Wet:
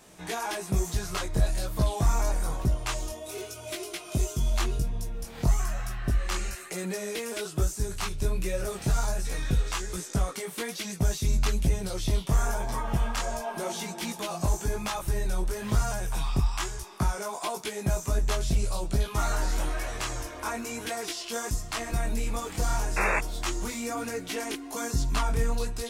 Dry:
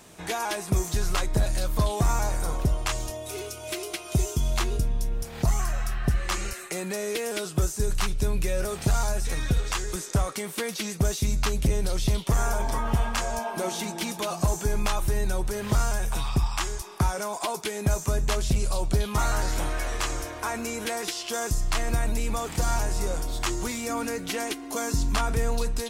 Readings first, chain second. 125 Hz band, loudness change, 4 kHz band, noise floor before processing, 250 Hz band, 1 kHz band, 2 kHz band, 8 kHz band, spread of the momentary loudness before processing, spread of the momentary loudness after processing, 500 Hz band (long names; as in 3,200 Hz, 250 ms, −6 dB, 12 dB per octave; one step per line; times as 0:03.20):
−2.0 dB, −2.0 dB, −3.0 dB, −39 dBFS, −2.5 dB, −2.5 dB, −1.5 dB, −3.0 dB, 5 LU, 6 LU, −3.0 dB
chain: sound drawn into the spectrogram noise, 0:22.96–0:23.19, 320–2,700 Hz −23 dBFS
multi-voice chorus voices 2, 1.1 Hz, delay 19 ms, depth 3.4 ms